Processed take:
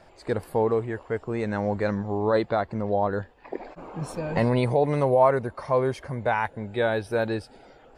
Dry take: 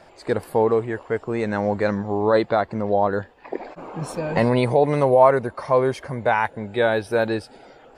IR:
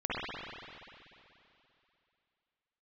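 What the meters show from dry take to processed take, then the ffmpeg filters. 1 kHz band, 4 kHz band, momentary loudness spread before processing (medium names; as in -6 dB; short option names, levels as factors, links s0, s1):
-5.0 dB, -5.0 dB, 12 LU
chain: -af "lowshelf=f=94:g=10,volume=0.562"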